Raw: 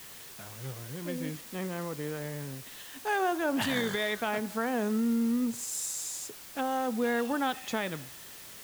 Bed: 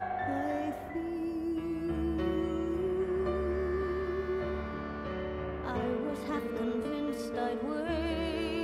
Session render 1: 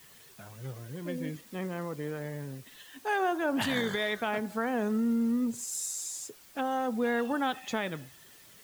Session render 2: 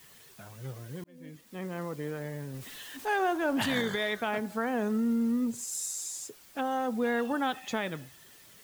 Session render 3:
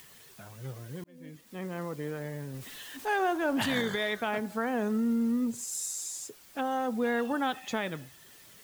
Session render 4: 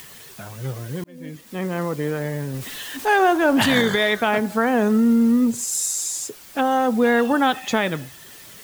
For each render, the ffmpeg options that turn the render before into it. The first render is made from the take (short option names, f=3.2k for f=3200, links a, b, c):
-af "afftdn=nr=9:nf=-47"
-filter_complex "[0:a]asettb=1/sr,asplit=3[a][b][c];[a]atrim=end=2.544[d];[b]atrim=start=2.54:end=3.82,asetpts=PTS-STARTPTS,afade=t=in:d=0.004:c=qsin,afade=t=out:st=1.276:d=0.004:c=qsin,aeval=exprs='val(0)+0.5*0.00668*sgn(val(0))':c=same[e];[c]atrim=start=3.816[f];[d][e]acrossfade=d=0.004:c1=hsin:c2=qsin[g];[g][f]acrossfade=d=0.004:c1=qsin:c2=hsin,asplit=2[h][i];[h]atrim=end=1.04,asetpts=PTS-STARTPTS,afade=t=out:st=1.036:d=0.004:c=hsin[j];[i]atrim=start=1.04,asetpts=PTS-STARTPTS,afade=t=in:d=0.77[k];[j][k]concat=n=2:v=0:a=1"
-af "acompressor=mode=upward:threshold=-50dB:ratio=2.5"
-af "volume=11.5dB"